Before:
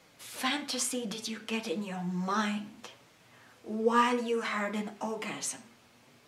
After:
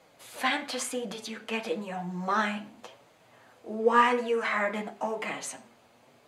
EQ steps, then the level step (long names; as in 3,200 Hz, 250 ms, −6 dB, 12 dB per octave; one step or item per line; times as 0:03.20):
notch filter 5,500 Hz, Q 11
dynamic equaliser 1,900 Hz, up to +8 dB, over −48 dBFS, Q 1.2
parametric band 650 Hz +9 dB 1.4 octaves
−3.0 dB